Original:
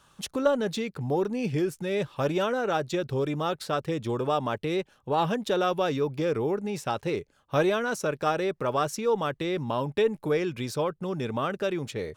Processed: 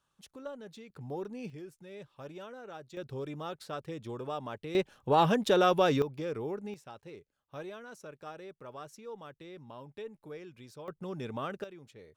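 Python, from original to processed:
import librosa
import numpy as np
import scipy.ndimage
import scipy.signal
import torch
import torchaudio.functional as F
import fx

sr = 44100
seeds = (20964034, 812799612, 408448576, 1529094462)

y = fx.gain(x, sr, db=fx.steps((0.0, -19.0), (0.9, -12.0), (1.5, -19.0), (2.97, -11.0), (4.75, 1.0), (6.02, -9.0), (6.74, -19.0), (10.88, -8.0), (11.64, -20.0)))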